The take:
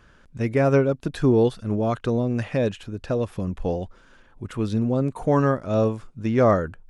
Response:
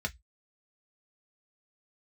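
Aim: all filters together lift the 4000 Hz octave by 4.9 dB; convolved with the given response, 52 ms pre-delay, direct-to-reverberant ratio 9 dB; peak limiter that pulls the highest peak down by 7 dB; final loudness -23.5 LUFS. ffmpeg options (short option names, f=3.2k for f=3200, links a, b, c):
-filter_complex "[0:a]equalizer=f=4k:t=o:g=6,alimiter=limit=-14.5dB:level=0:latency=1,asplit=2[a][b];[1:a]atrim=start_sample=2205,adelay=52[c];[b][c]afir=irnorm=-1:irlink=0,volume=-13dB[d];[a][d]amix=inputs=2:normalize=0,volume=1.5dB"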